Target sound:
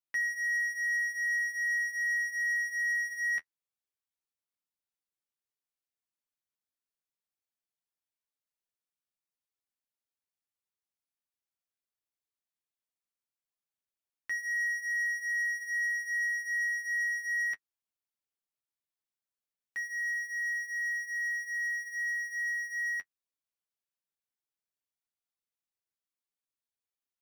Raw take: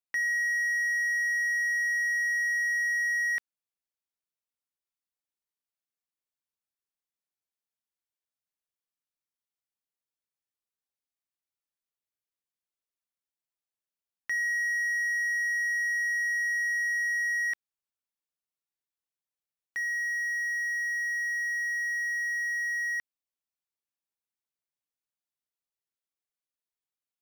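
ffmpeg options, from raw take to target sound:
ffmpeg -i in.wav -af "flanger=delay=8.2:depth=4.2:regen=-28:speed=0.16:shape=triangular" out.wav

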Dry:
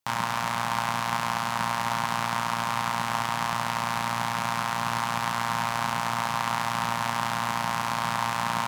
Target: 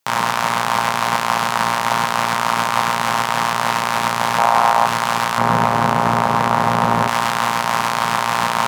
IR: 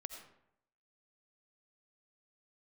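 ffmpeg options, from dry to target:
-filter_complex "[0:a]tremolo=f=290:d=0.667,asettb=1/sr,asplit=3[link_01][link_02][link_03];[link_01]atrim=end=4.384[link_04];[link_02]atrim=start=4.38:end=4.86,asetpts=PTS-STARTPTS,afade=type=in:duration=0.004:curve=qsin,afade=type=out:start_time=0.476:duration=0.004:curve=qsin,equalizer=frequency=740:width=1.1:gain=12[link_05];[link_03]atrim=start=4.856[link_06];[link_04][link_05]acrossfade=duration=0.004:curve1=hsin:curve2=qsin[link_07];[link_07][link_06]acrossfade=duration=0.004:curve1=qsin:curve2=hsin,highpass=frequency=170:poles=1,asettb=1/sr,asplit=3[link_08][link_09][link_10];[link_08]atrim=end=5.384[link_11];[link_09]atrim=start=5.38:end=7.08,asetpts=PTS-STARTPTS,afade=type=in:duration=0.004:curve=qsin,afade=type=out:start_time=1.696:duration=0.004:curve=qsin,tiltshelf=frequency=1100:gain=8[link_12];[link_10]atrim=start=7.076[link_13];[link_11][link_12]acrossfade=duration=0.004:curve1=hsin:curve2=qsin[link_14];[link_14][link_13]acrossfade=duration=0.004:curve1=qsin:curve2=hsin,alimiter=level_in=15.5dB:limit=-1dB:release=50:level=0:latency=1,volume=-1dB"

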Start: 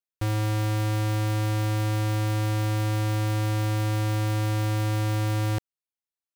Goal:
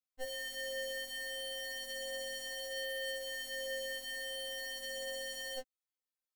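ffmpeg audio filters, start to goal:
ffmpeg -i in.wav -af "flanger=delay=17:depth=3:speed=0.34,afftfilt=real='re*3.46*eq(mod(b,12),0)':imag='im*3.46*eq(mod(b,12),0)':win_size=2048:overlap=0.75,volume=1dB" out.wav

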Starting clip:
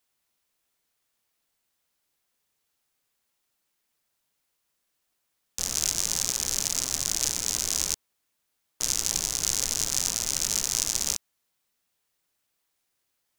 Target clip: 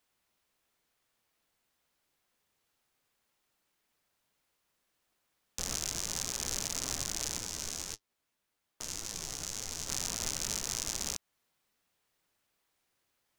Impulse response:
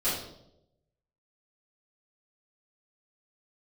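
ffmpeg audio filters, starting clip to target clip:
-filter_complex "[0:a]highshelf=frequency=4000:gain=-7.5,alimiter=limit=-18dB:level=0:latency=1:release=192,asettb=1/sr,asplit=3[link_01][link_02][link_03];[link_01]atrim=end=7.384[link_04];[link_02]atrim=start=7.38:end=9.89,asetpts=PTS-STARTPTS,afade=type=in:duration=0.004:curve=qsin,afade=type=out:start_time=2.506:duration=0.004:curve=qsin,flanger=delay=8.6:depth=6.3:regen=42:speed=1.8:shape=triangular[link_05];[link_03]atrim=start=9.886[link_06];[link_04][link_05]acrossfade=duration=0.004:curve1=hsin:curve2=qsin[link_07];[link_07][link_06]acrossfade=duration=0.004:curve1=qsin:curve2=hsin,volume=3dB"

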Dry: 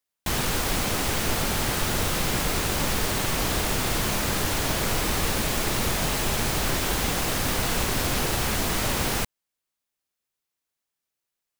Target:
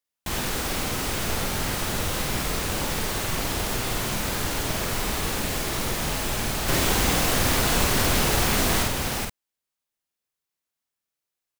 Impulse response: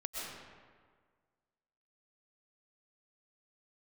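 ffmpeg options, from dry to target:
-filter_complex "[0:a]asettb=1/sr,asplit=3[link_01][link_02][link_03];[link_01]atrim=end=6.684[link_04];[link_02]atrim=start=6.68:end=8.83,asetpts=PTS-STARTPTS,afade=type=in:duration=0.004:curve=qsin,afade=type=out:start_time=2.146:duration=0.004:curve=qsin,acontrast=38[link_05];[link_03]atrim=start=8.826[link_06];[link_04][link_05]acrossfade=duration=0.004:curve1=hsin:curve2=qsin[link_07];[link_07][link_06]acrossfade=duration=0.004:curve1=qsin:curve2=hsin,asplit=2[link_08][link_09];[link_09]adelay=49,volume=-3dB[link_10];[link_08][link_10]amix=inputs=2:normalize=0,volume=-3.5dB"

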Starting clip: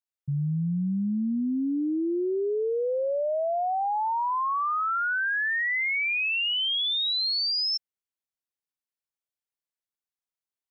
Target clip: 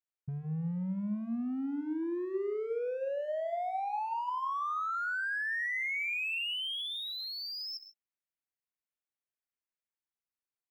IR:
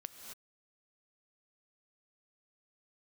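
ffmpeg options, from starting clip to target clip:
-filter_complex "[0:a]asoftclip=type=hard:threshold=-25dB,highshelf=frequency=3100:width_type=q:width=1.5:gain=-6.5,acompressor=threshold=-28dB:ratio=6,bandreject=frequency=74.16:width_type=h:width=4,bandreject=frequency=148.32:width_type=h:width=4,bandreject=frequency=222.48:width_type=h:width=4,bandreject=frequency=296.64:width_type=h:width=4,bandreject=frequency=370.8:width_type=h:width=4,bandreject=frequency=444.96:width_type=h:width=4,bandreject=frequency=519.12:width_type=h:width=4,bandreject=frequency=593.28:width_type=h:width=4,bandreject=frequency=667.44:width_type=h:width=4,bandreject=frequency=741.6:width_type=h:width=4,bandreject=frequency=815.76:width_type=h:width=4,bandreject=frequency=889.92:width_type=h:width=4,bandreject=frequency=964.08:width_type=h:width=4,bandreject=frequency=1038.24:width_type=h:width=4,asplit=2[link_01][link_02];[1:a]atrim=start_sample=2205,asetrate=74970,aresample=44100[link_03];[link_02][link_03]afir=irnorm=-1:irlink=0,volume=6dB[link_04];[link_01][link_04]amix=inputs=2:normalize=0,volume=-9dB"

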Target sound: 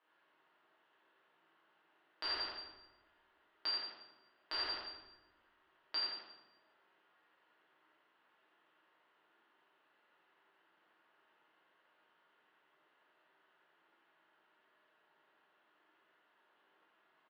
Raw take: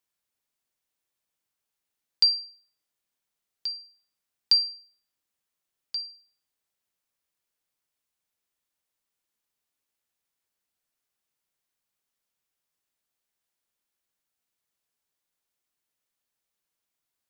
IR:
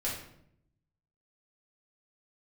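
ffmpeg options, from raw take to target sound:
-filter_complex "[0:a]aecho=1:1:87|174|261|348|435:0.473|0.189|0.0757|0.0303|0.0121,acompressor=threshold=-27dB:ratio=6,highpass=380,equalizer=frequency=480:width_type=q:width=4:gain=-6,equalizer=frequency=770:width_type=q:width=4:gain=-5,equalizer=frequency=1200:width_type=q:width=4:gain=-3,equalizer=frequency=2300:width_type=q:width=4:gain=-9,lowpass=frequency=2800:width=0.5412,lowpass=frequency=2800:width=1.3066,asplit=2[link_01][link_02];[link_02]highpass=frequency=720:poles=1,volume=7dB,asoftclip=type=tanh:threshold=-24.5dB[link_03];[link_01][link_03]amix=inputs=2:normalize=0,lowpass=frequency=1200:poles=1,volume=-6dB[link_04];[1:a]atrim=start_sample=2205,asetrate=27342,aresample=44100[link_05];[link_04][link_05]afir=irnorm=-1:irlink=0,alimiter=level_in=17.5dB:limit=-24dB:level=0:latency=1:release=212,volume=-17.5dB,volume=15.5dB"

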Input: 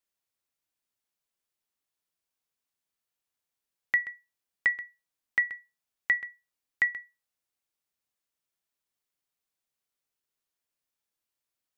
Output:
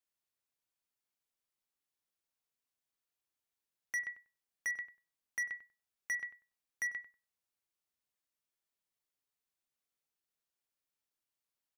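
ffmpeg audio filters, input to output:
ffmpeg -i in.wav -filter_complex "[0:a]volume=28dB,asoftclip=hard,volume=-28dB,asplit=2[link_01][link_02];[link_02]adelay=96,lowpass=frequency=1400:poles=1,volume=-11.5dB,asplit=2[link_03][link_04];[link_04]adelay=96,lowpass=frequency=1400:poles=1,volume=0.2,asplit=2[link_05][link_06];[link_06]adelay=96,lowpass=frequency=1400:poles=1,volume=0.2[link_07];[link_01][link_03][link_05][link_07]amix=inputs=4:normalize=0,volume=-4.5dB" out.wav

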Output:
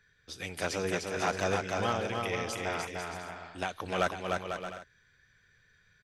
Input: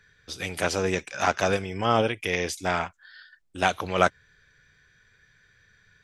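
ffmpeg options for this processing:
ffmpeg -i in.wav -filter_complex "[0:a]asettb=1/sr,asplit=3[link_01][link_02][link_03];[link_01]atrim=end=1.914[link_04];[link_02]atrim=start=1.91:end=3.76,asetpts=PTS-STARTPTS,afade=type=in:duration=0.004:curve=qsin,afade=type=out:start_time=1.846:duration=0.004:curve=qsin,acompressor=threshold=-23dB:ratio=6[link_05];[link_03]atrim=start=3.756[link_06];[link_04][link_05]acrossfade=duration=0.004:curve1=hsin:curve2=qsin[link_07];[link_07][link_06]acrossfade=duration=0.004:curve1=qsin:curve2=hsin,asoftclip=type=hard:threshold=-13dB,aecho=1:1:300|495|621.8|704.1|757.7:0.631|0.398|0.251|0.158|0.1,volume=-7dB" out.wav

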